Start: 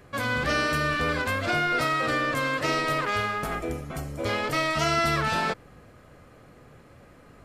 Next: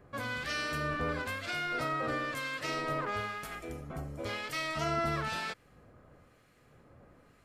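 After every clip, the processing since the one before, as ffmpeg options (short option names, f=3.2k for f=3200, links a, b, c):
-filter_complex "[0:a]acrossover=split=1600[a][b];[a]aeval=exprs='val(0)*(1-0.7/2+0.7/2*cos(2*PI*1*n/s))':c=same[c];[b]aeval=exprs='val(0)*(1-0.7/2-0.7/2*cos(2*PI*1*n/s))':c=same[d];[c][d]amix=inputs=2:normalize=0,volume=-5.5dB"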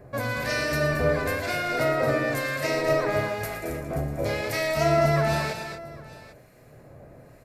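-filter_complex "[0:a]equalizer=f=125:t=o:w=0.33:g=7,equalizer=f=400:t=o:w=0.33:g=3,equalizer=f=630:t=o:w=0.33:g=9,equalizer=f=1.25k:t=o:w=0.33:g=-7,equalizer=f=3.15k:t=o:w=0.33:g=-10,equalizer=f=12.5k:t=o:w=0.33:g=8,asplit=2[a][b];[b]aecho=0:1:115|223|251|796:0.266|0.422|0.237|0.119[c];[a][c]amix=inputs=2:normalize=0,volume=7.5dB"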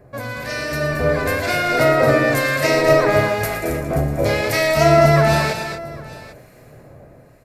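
-af "dynaudnorm=f=470:g=5:m=12.5dB"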